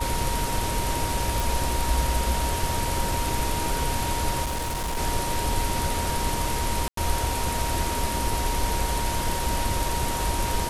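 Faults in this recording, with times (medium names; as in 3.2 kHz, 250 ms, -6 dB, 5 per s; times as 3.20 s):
whine 940 Hz -30 dBFS
1.40 s: pop
4.44–4.98 s: clipped -25 dBFS
6.88–6.97 s: dropout 93 ms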